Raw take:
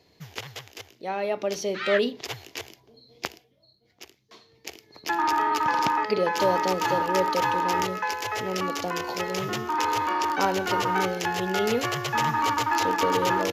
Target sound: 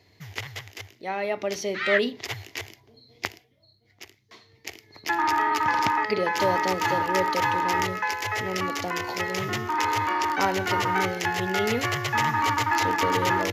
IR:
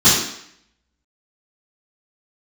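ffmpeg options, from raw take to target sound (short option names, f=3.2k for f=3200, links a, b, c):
-af "equalizer=f=100:t=o:w=0.33:g=12,equalizer=f=160:t=o:w=0.33:g=-3,equalizer=f=500:t=o:w=0.33:g=-4,equalizer=f=2k:t=o:w=0.33:g=8"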